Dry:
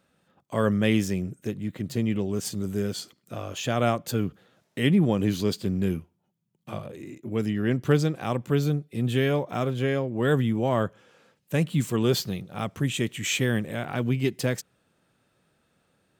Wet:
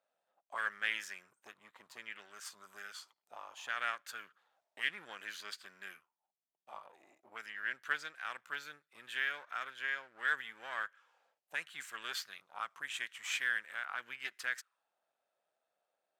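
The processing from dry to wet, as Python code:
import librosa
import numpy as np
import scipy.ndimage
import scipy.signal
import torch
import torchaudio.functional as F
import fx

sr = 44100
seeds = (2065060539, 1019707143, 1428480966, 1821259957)

y = np.where(x < 0.0, 10.0 ** (-7.0 / 20.0) * x, x)
y = fx.auto_wah(y, sr, base_hz=660.0, top_hz=1600.0, q=4.0, full_db=-25.0, direction='up')
y = scipy.signal.lfilter([1.0, -0.97], [1.0], y)
y = F.gain(torch.from_numpy(y), 16.0).numpy()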